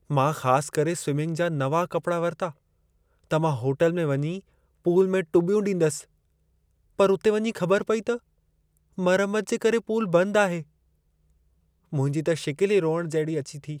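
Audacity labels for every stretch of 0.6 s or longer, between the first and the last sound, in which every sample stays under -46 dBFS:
2.520000	3.300000	silence
6.040000	6.990000	silence
8.180000	8.980000	silence
10.630000	11.920000	silence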